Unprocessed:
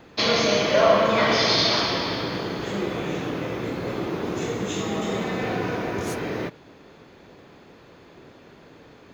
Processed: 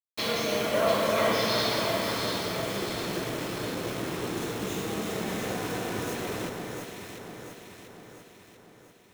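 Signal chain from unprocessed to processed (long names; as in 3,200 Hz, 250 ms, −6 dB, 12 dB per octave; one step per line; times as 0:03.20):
bit reduction 5 bits
notch filter 4,700 Hz, Q 13
delay that swaps between a low-pass and a high-pass 346 ms, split 1,800 Hz, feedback 72%, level −2.5 dB
level −8 dB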